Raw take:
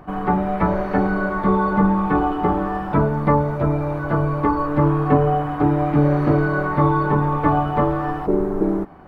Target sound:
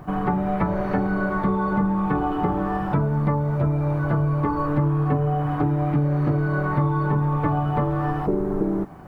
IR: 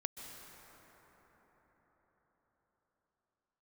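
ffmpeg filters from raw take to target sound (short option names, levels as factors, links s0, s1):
-af "equalizer=f=130:w=1.7:g=8.5,acompressor=threshold=0.112:ratio=5,acrusher=bits=10:mix=0:aa=0.000001"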